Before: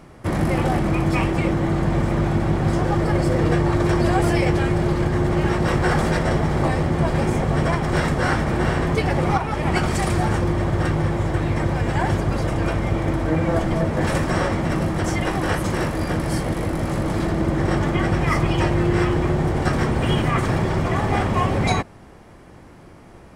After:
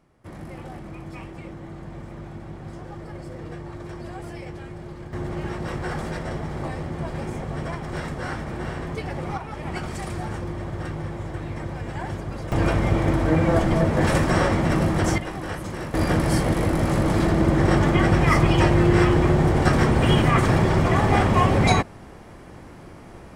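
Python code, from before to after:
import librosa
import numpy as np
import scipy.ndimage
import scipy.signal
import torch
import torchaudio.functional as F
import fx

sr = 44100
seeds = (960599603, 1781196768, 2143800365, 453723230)

y = fx.gain(x, sr, db=fx.steps((0.0, -17.5), (5.13, -10.0), (12.52, 1.0), (15.18, -9.0), (15.94, 2.0)))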